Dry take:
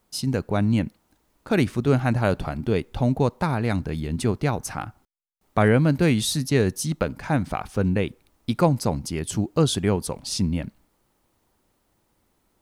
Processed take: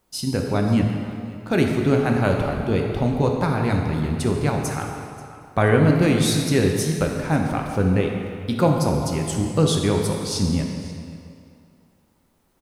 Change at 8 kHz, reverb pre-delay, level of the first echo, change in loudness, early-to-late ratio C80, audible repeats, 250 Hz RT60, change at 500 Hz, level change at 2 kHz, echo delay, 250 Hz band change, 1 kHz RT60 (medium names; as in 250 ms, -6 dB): +2.0 dB, 4 ms, -20.0 dB, +2.5 dB, 4.0 dB, 1, 2.3 s, +3.0 dB, +2.5 dB, 533 ms, +2.5 dB, 2.5 s